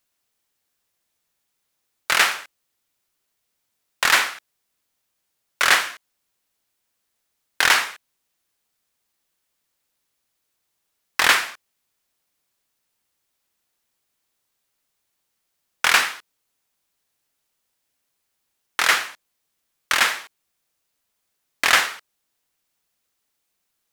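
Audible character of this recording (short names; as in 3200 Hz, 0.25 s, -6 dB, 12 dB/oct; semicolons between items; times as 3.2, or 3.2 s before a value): noise floor -76 dBFS; spectral tilt -0.5 dB/oct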